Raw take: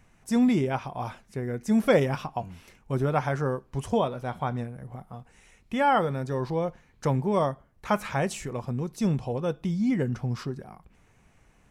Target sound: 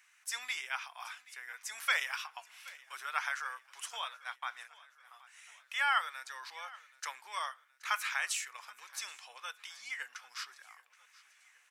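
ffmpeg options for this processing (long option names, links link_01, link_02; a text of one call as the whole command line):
ffmpeg -i in.wav -filter_complex "[0:a]asettb=1/sr,asplit=3[link_01][link_02][link_03];[link_01]atrim=end=4.024[link_04];[link_02]atrim=start=4.02:end=5.05,asetpts=PTS-STARTPTS,afade=type=in:duration=0.004:curve=qsin,afade=type=out:start_time=1.026:duration=0.004:curve=qsin,agate=range=-21dB:threshold=-32dB:ratio=16:detection=peak[link_05];[link_03]atrim=start=5.046[link_06];[link_04][link_05]acrossfade=duration=0.004:curve1=hsin:curve2=qsin[link_07];[link_07][link_06]acrossfade=duration=0.004:curve1=qsin:curve2=hsin,highpass=frequency=1400:width=0.5412,highpass=frequency=1400:width=1.3066,aecho=1:1:775|1550|2325|3100:0.0891|0.0481|0.026|0.014,volume=2.5dB" out.wav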